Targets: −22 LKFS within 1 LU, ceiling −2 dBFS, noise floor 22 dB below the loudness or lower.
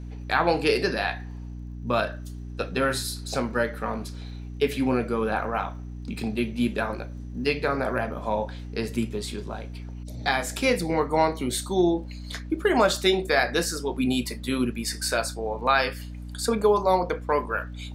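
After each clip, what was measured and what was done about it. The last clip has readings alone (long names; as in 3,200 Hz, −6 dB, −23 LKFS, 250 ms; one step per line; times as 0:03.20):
crackle rate 42 per second; mains hum 60 Hz; hum harmonics up to 300 Hz; level of the hum −35 dBFS; integrated loudness −26.0 LKFS; sample peak −7.0 dBFS; target loudness −22.0 LKFS
→ click removal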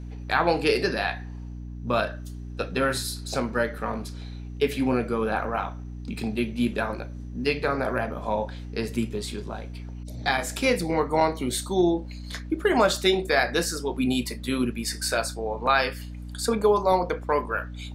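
crackle rate 0.33 per second; mains hum 60 Hz; hum harmonics up to 300 Hz; level of the hum −35 dBFS
→ mains-hum notches 60/120/180/240/300 Hz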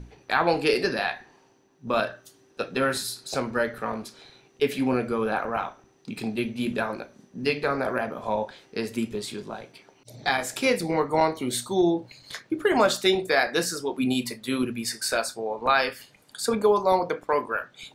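mains hum none found; integrated loudness −26.0 LKFS; sample peak −7.0 dBFS; target loudness −22.0 LKFS
→ level +4 dB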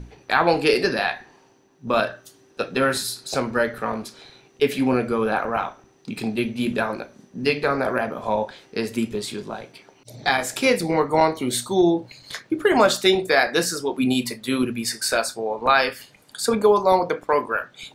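integrated loudness −22.0 LKFS; sample peak −3.0 dBFS; background noise floor −56 dBFS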